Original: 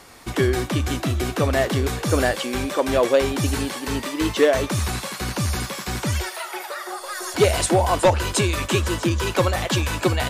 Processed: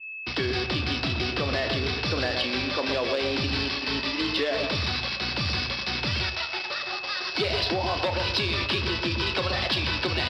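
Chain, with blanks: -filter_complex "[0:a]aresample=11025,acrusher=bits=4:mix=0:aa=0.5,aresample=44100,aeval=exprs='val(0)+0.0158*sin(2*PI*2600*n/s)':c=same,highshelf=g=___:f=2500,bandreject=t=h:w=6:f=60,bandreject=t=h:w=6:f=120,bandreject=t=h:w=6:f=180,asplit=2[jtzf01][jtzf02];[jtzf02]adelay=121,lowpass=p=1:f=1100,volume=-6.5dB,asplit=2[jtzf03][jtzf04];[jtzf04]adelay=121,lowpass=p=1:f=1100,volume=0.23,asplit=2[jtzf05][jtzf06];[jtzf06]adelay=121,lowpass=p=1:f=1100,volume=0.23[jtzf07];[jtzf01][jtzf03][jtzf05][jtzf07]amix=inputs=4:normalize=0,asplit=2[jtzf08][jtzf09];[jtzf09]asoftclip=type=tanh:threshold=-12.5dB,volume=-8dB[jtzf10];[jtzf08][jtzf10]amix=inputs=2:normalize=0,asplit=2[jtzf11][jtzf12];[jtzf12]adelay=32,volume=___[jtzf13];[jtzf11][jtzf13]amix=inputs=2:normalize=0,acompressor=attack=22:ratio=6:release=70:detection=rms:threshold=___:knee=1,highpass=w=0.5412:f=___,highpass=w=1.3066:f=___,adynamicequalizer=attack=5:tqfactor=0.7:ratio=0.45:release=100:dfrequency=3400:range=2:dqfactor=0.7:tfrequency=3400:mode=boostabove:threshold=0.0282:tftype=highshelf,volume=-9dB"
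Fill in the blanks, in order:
11.5, -12dB, -16dB, 54, 54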